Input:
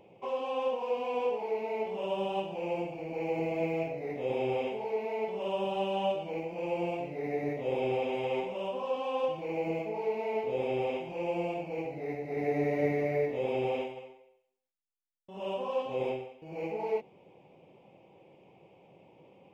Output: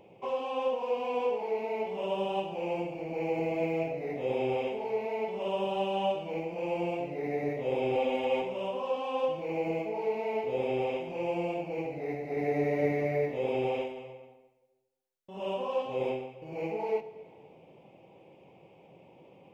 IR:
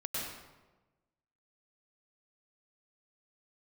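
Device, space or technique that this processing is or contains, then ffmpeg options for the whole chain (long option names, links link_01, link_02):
compressed reverb return: -filter_complex "[0:a]asplit=2[link_01][link_02];[1:a]atrim=start_sample=2205[link_03];[link_02][link_03]afir=irnorm=-1:irlink=0,acompressor=threshold=-33dB:ratio=4,volume=-10.5dB[link_04];[link_01][link_04]amix=inputs=2:normalize=0,asettb=1/sr,asplit=3[link_05][link_06][link_07];[link_05]atrim=end=7.954[link_08];[link_06]atrim=start=7.95:end=8.42,asetpts=PTS-STARTPTS,afade=type=in:duration=0.004:curve=qsin,afade=type=out:start_time=0.466:duration=0.004:curve=qsin,aecho=1:1:3.6:0.74,atrim=end_sample=20727[link_09];[link_07]atrim=start=8.416[link_10];[link_08][link_09]acrossfade=duration=0.004:curve1=hsin:curve2=qsin[link_11];[link_11][link_10]acrossfade=duration=0.004:curve1=qsin:curve2=hsin"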